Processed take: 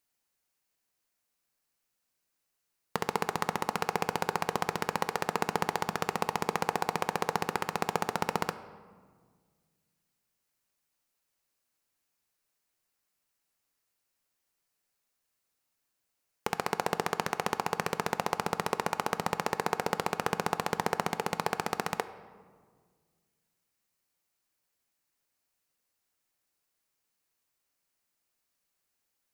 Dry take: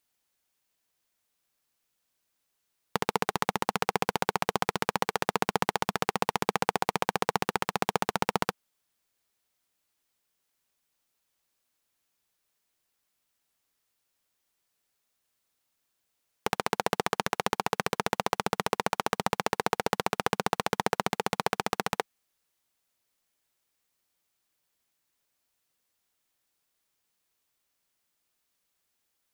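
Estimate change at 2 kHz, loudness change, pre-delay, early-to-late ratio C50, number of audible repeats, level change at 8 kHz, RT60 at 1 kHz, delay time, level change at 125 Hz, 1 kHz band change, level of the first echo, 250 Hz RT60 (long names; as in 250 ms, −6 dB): −2.5 dB, −2.5 dB, 4 ms, 14.0 dB, no echo audible, −2.5 dB, 1.6 s, no echo audible, −1.5 dB, −2.0 dB, no echo audible, 2.2 s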